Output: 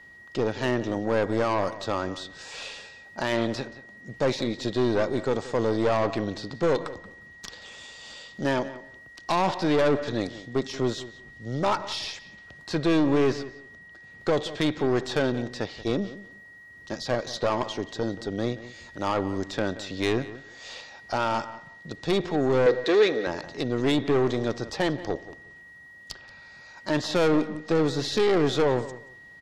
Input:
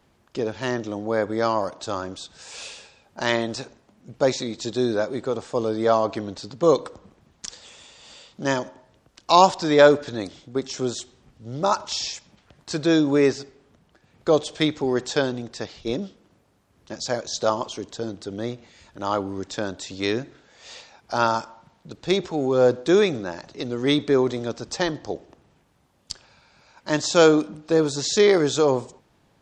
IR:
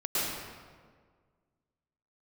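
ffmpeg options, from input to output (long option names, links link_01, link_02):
-filter_complex "[0:a]equalizer=frequency=4400:width=1.3:gain=3,acrossover=split=3800[link_01][link_02];[link_01]alimiter=limit=-12dB:level=0:latency=1:release=25[link_03];[link_02]acompressor=threshold=-49dB:ratio=6[link_04];[link_03][link_04]amix=inputs=2:normalize=0,aeval=exprs='(tanh(11.2*val(0)+0.45)-tanh(0.45))/11.2':channel_layout=same,aeval=exprs='val(0)+0.00316*sin(2*PI*1900*n/s)':channel_layout=same,asettb=1/sr,asplit=3[link_05][link_06][link_07];[link_05]atrim=end=22.664[link_08];[link_06]atrim=start=22.66:end=23.27,asetpts=PTS-STARTPTS,afade=type=in:duration=0.004:curve=qsin,afade=type=out:start_time=0.606:duration=0.004:curve=qsin,highpass=340,equalizer=frequency=460:width_type=q:width=4:gain=9,equalizer=frequency=910:width_type=q:width=4:gain=-4,equalizer=frequency=1900:width_type=q:width=4:gain=8,equalizer=frequency=4000:width_type=q:width=4:gain=7,lowpass=frequency=7700:width=0.5412,lowpass=frequency=7700:width=1.3066[link_09];[link_07]atrim=start=23.266[link_10];[link_08][link_09]acrossfade=duration=0.004:curve1=hsin:curve2=qsin[link_11];[link_11][link_10]acrossfade=duration=0.004:curve1=qsin:curve2=hsin,asplit=2[link_12][link_13];[link_13]adelay=179,lowpass=frequency=3900:poles=1,volume=-16dB,asplit=2[link_14][link_15];[link_15]adelay=179,lowpass=frequency=3900:poles=1,volume=0.18[link_16];[link_12][link_14][link_16]amix=inputs=3:normalize=0,volume=3dB"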